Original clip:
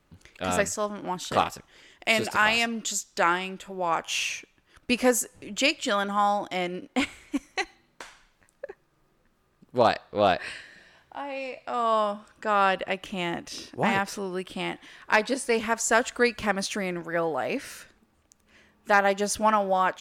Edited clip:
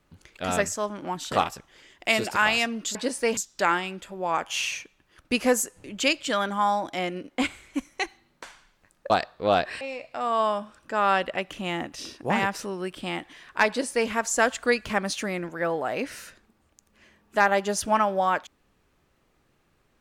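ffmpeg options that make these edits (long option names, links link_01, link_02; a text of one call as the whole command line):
ffmpeg -i in.wav -filter_complex "[0:a]asplit=5[link_01][link_02][link_03][link_04][link_05];[link_01]atrim=end=2.952[link_06];[link_02]atrim=start=15.208:end=15.632[link_07];[link_03]atrim=start=2.948:end=8.682[link_08];[link_04]atrim=start=9.828:end=10.542[link_09];[link_05]atrim=start=11.338[link_10];[link_06][link_07]acrossfade=duration=0.004:curve1=hsin:curve2=hsin[link_11];[link_11][link_08]acrossfade=duration=0.004:curve1=hsin:curve2=hsin[link_12];[link_12][link_09]acrossfade=duration=0.004:curve1=hsin:curve2=hsin[link_13];[link_13][link_10]acrossfade=duration=0.004:curve1=hsin:curve2=hsin" out.wav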